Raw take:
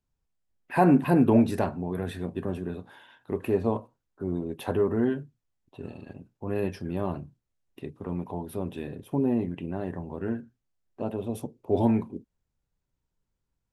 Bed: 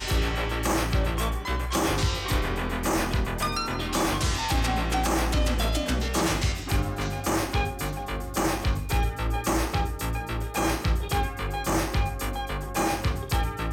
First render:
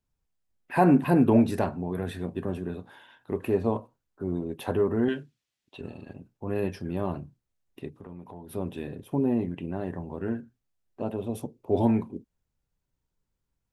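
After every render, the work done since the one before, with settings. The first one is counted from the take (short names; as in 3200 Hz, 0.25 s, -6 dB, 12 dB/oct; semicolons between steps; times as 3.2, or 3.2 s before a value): 5.08–5.81 weighting filter D; 7.88–8.51 compressor 3:1, threshold -42 dBFS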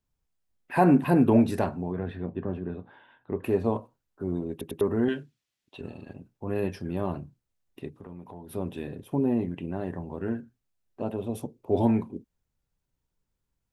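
1.92–3.44 air absorption 390 m; 4.51 stutter in place 0.10 s, 3 plays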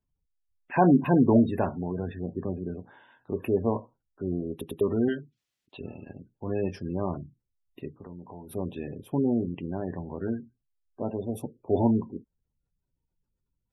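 spectral gate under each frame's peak -25 dB strong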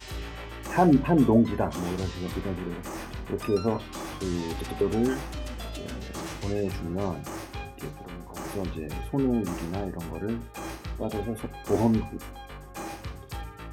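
add bed -11.5 dB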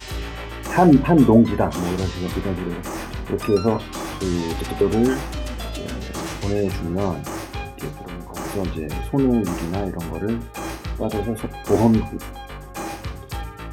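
gain +7 dB; limiter -3 dBFS, peak gain reduction 2 dB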